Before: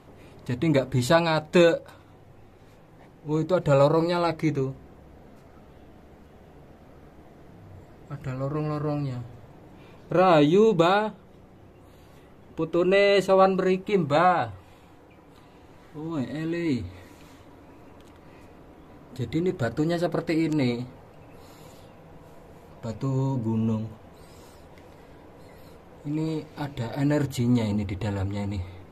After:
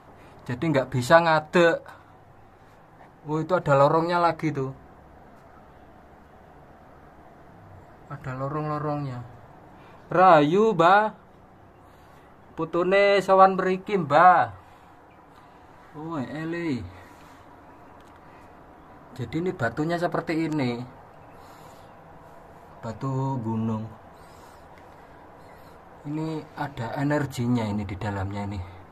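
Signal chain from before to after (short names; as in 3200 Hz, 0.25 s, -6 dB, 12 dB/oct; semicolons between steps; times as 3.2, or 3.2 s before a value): band shelf 1100 Hz +8 dB; gain -2 dB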